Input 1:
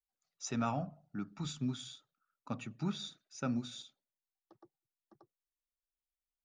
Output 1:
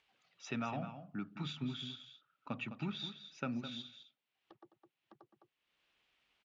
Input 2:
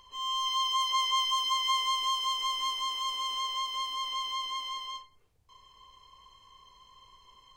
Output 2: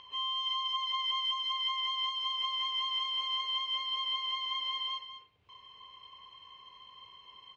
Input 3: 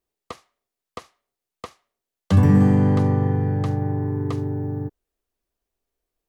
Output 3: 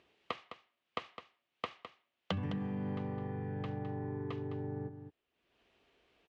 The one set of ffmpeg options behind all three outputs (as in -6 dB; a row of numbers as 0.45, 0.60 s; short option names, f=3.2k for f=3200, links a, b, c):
-af "highpass=100,acompressor=threshold=-35dB:ratio=12,aecho=1:1:209:0.299,acompressor=mode=upward:threshold=-57dB:ratio=2.5,lowpass=f=2.9k:t=q:w=2.4"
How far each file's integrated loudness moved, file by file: -2.5, -2.0, -20.5 LU